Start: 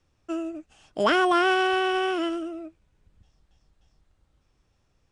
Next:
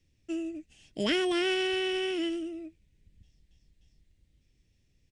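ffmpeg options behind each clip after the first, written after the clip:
ffmpeg -i in.wav -af "firequalizer=gain_entry='entry(230,0);entry(800,-17);entry(1300,-21);entry(1900,-1)':delay=0.05:min_phase=1" out.wav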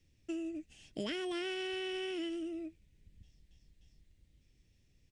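ffmpeg -i in.wav -af "acompressor=threshold=-37dB:ratio=4" out.wav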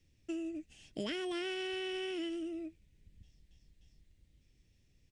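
ffmpeg -i in.wav -af anull out.wav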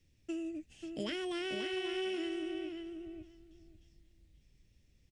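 ffmpeg -i in.wav -filter_complex "[0:a]asplit=2[link_01][link_02];[link_02]adelay=539,lowpass=frequency=3100:poles=1,volume=-5.5dB,asplit=2[link_03][link_04];[link_04]adelay=539,lowpass=frequency=3100:poles=1,volume=0.16,asplit=2[link_05][link_06];[link_06]adelay=539,lowpass=frequency=3100:poles=1,volume=0.16[link_07];[link_01][link_03][link_05][link_07]amix=inputs=4:normalize=0" out.wav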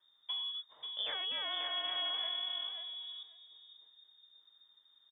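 ffmpeg -i in.wav -af "lowpass=frequency=3100:width_type=q:width=0.5098,lowpass=frequency=3100:width_type=q:width=0.6013,lowpass=frequency=3100:width_type=q:width=0.9,lowpass=frequency=3100:width_type=q:width=2.563,afreqshift=-3700" out.wav

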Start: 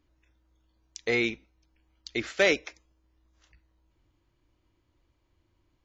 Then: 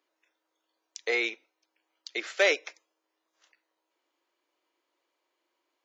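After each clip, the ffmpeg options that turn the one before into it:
ffmpeg -i in.wav -af "highpass=frequency=420:width=0.5412,highpass=frequency=420:width=1.3066" out.wav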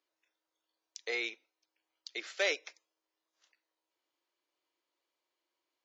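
ffmpeg -i in.wav -af "equalizer=frequency=4700:width_type=o:width=1.4:gain=5.5,volume=-9dB" out.wav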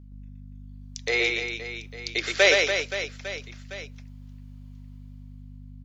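ffmpeg -i in.wav -filter_complex "[0:a]dynaudnorm=framelen=220:gausssize=9:maxgain=13dB,aeval=exprs='val(0)+0.00562*(sin(2*PI*50*n/s)+sin(2*PI*2*50*n/s)/2+sin(2*PI*3*50*n/s)/3+sin(2*PI*4*50*n/s)/4+sin(2*PI*5*50*n/s)/5)':channel_layout=same,asplit=2[link_01][link_02];[link_02]aecho=0:1:120|288|523.2|852.5|1313:0.631|0.398|0.251|0.158|0.1[link_03];[link_01][link_03]amix=inputs=2:normalize=0" out.wav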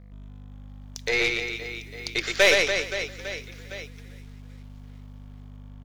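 ffmpeg -i in.wav -filter_complex "[0:a]aeval=exprs='0.596*(cos(1*acos(clip(val(0)/0.596,-1,1)))-cos(1*PI/2))+0.0335*(cos(8*acos(clip(val(0)/0.596,-1,1)))-cos(8*PI/2))':channel_layout=same,asplit=5[link_01][link_02][link_03][link_04][link_05];[link_02]adelay=394,afreqshift=-34,volume=-20.5dB[link_06];[link_03]adelay=788,afreqshift=-68,volume=-26.7dB[link_07];[link_04]adelay=1182,afreqshift=-102,volume=-32.9dB[link_08];[link_05]adelay=1576,afreqshift=-136,volume=-39.1dB[link_09];[link_01][link_06][link_07][link_08][link_09]amix=inputs=5:normalize=0,acrusher=bits=8:mix=0:aa=0.5" out.wav

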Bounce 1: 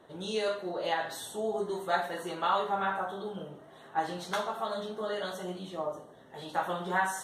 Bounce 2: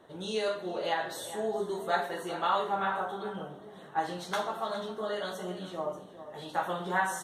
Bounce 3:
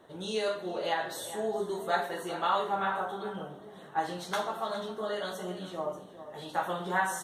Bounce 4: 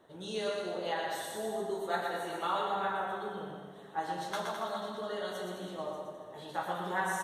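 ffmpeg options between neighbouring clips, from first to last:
ffmpeg -i in.wav -filter_complex "[0:a]asplit=2[link_01][link_02];[link_02]adelay=408.2,volume=-12dB,highshelf=frequency=4000:gain=-9.18[link_03];[link_01][link_03]amix=inputs=2:normalize=0" out.wav
ffmpeg -i in.wav -af "highshelf=frequency=9600:gain=3.5" out.wav
ffmpeg -i in.wav -af "aecho=1:1:120|210|277.5|328.1|366.1:0.631|0.398|0.251|0.158|0.1,volume=-5dB" out.wav

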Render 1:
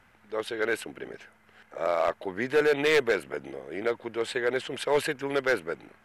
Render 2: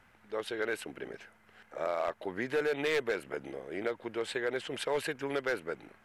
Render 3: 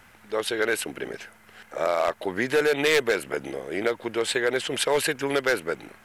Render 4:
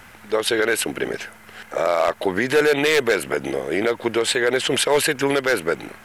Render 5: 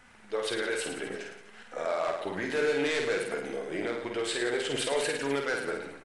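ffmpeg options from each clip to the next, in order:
ffmpeg -i in.wav -af "acompressor=threshold=-29dB:ratio=2,volume=-2.5dB" out.wav
ffmpeg -i in.wav -af "highshelf=frequency=4300:gain=9.5,volume=8.5dB" out.wav
ffmpeg -i in.wav -af "alimiter=limit=-17.5dB:level=0:latency=1:release=85,volume=8.5dB" out.wav
ffmpeg -i in.wav -filter_complex "[0:a]flanger=delay=4:depth=7.5:regen=46:speed=0.58:shape=sinusoidal,asplit=2[link_01][link_02];[link_02]aecho=0:1:50|107.5|173.6|249.7|337.1:0.631|0.398|0.251|0.158|0.1[link_03];[link_01][link_03]amix=inputs=2:normalize=0,aresample=22050,aresample=44100,volume=-9dB" out.wav

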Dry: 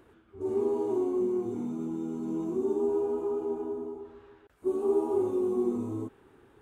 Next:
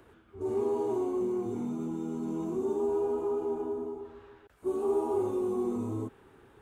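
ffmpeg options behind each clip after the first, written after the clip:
ffmpeg -i in.wav -filter_complex "[0:a]acrossover=split=190|410[link_01][link_02][link_03];[link_02]alimiter=level_in=8.5dB:limit=-24dB:level=0:latency=1,volume=-8.5dB[link_04];[link_01][link_04][link_03]amix=inputs=3:normalize=0,equalizer=frequency=310:width_type=o:width=0.75:gain=-3.5,volume=2.5dB" out.wav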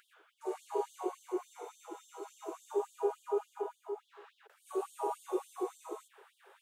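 ffmpeg -i in.wav -af "afftfilt=real='re*gte(b*sr/1024,340*pow(3100/340,0.5+0.5*sin(2*PI*3.5*pts/sr)))':imag='im*gte(b*sr/1024,340*pow(3100/340,0.5+0.5*sin(2*PI*3.5*pts/sr)))':win_size=1024:overlap=0.75,volume=2.5dB" out.wav

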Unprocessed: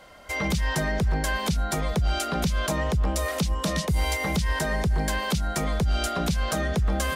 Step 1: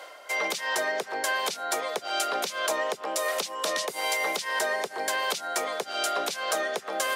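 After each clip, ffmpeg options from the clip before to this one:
ffmpeg -i in.wav -af "highpass=frequency=410:width=0.5412,highpass=frequency=410:width=1.3066,areverse,acompressor=mode=upward:threshold=-34dB:ratio=2.5,areverse,volume=1.5dB" out.wav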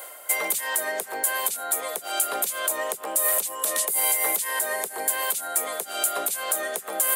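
ffmpeg -i in.wav -af "aexciter=amount=10:drive=6.8:freq=7900,alimiter=limit=-10dB:level=0:latency=1:release=115" out.wav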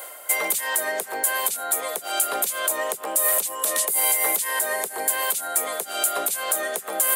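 ffmpeg -i in.wav -af "acontrast=57,volume=-4dB" out.wav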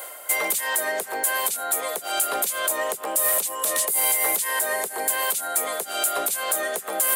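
ffmpeg -i in.wav -af "asoftclip=type=tanh:threshold=-14.5dB,volume=1dB" out.wav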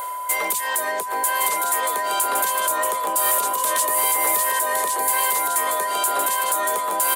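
ffmpeg -i in.wav -af "aeval=exprs='val(0)+0.0447*sin(2*PI*1000*n/s)':channel_layout=same,aecho=1:1:1113:0.631" out.wav

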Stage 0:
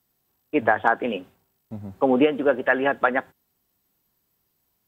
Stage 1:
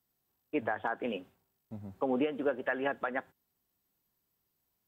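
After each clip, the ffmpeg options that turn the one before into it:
ffmpeg -i in.wav -af "alimiter=limit=-12dB:level=0:latency=1:release=191,volume=-8.5dB" out.wav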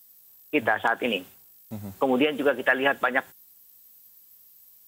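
ffmpeg -i in.wav -af "crystalizer=i=6.5:c=0,volume=7dB" out.wav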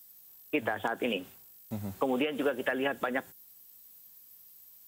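ffmpeg -i in.wav -filter_complex "[0:a]acrossover=split=510|4300[link_01][link_02][link_03];[link_01]acompressor=threshold=-30dB:ratio=4[link_04];[link_02]acompressor=threshold=-33dB:ratio=4[link_05];[link_03]acompressor=threshold=-50dB:ratio=4[link_06];[link_04][link_05][link_06]amix=inputs=3:normalize=0" out.wav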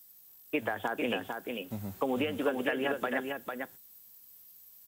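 ffmpeg -i in.wav -af "aecho=1:1:450:0.562,volume=-1.5dB" out.wav

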